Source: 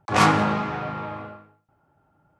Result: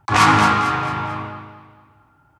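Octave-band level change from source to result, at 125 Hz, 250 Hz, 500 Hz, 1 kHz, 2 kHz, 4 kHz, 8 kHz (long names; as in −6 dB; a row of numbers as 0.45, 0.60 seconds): +4.5, +2.5, −0.5, +7.0, +7.5, +7.0, +6.0 decibels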